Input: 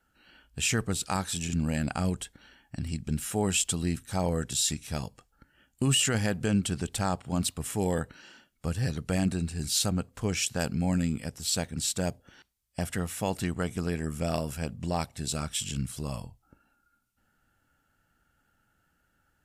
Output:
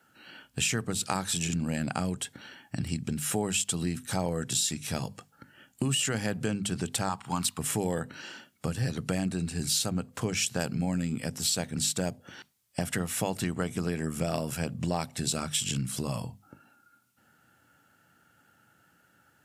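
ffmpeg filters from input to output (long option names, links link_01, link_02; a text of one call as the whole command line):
ffmpeg -i in.wav -filter_complex "[0:a]asettb=1/sr,asplit=3[link_01][link_02][link_03];[link_01]atrim=end=7.094[link_04];[link_02]atrim=start=7.09:end=7.59,asetpts=PTS-STARTPTS,afade=type=in:duration=0.004:curve=qsin,afade=type=out:start_time=0.496:duration=0.004:curve=qsin,lowshelf=frequency=740:width_type=q:width=3:gain=-7[link_05];[link_03]atrim=start=7.586[link_06];[link_04][link_05]acrossfade=duration=0.004:curve1=hsin:curve2=qsin[link_07];[link_07][link_06]acrossfade=duration=0.004:curve1=qsin:curve2=hsin,acompressor=threshold=-34dB:ratio=6,highpass=frequency=100:width=0.5412,highpass=frequency=100:width=1.3066,bandreject=frequency=50:width_type=h:width=6,bandreject=frequency=100:width_type=h:width=6,bandreject=frequency=150:width_type=h:width=6,bandreject=frequency=200:width_type=h:width=6,bandreject=frequency=250:width_type=h:width=6,volume=8.5dB" out.wav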